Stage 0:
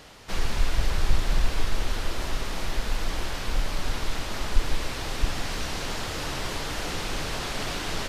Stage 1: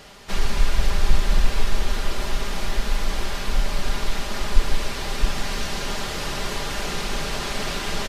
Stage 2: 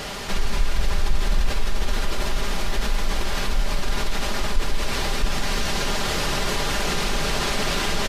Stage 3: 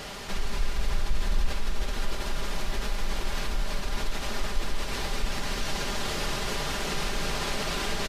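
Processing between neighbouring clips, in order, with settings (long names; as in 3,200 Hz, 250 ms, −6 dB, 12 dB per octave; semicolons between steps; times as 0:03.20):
comb filter 5 ms, depth 47%; level +2.5 dB
envelope flattener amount 50%; level −6 dB
single-tap delay 326 ms −7.5 dB; level −7 dB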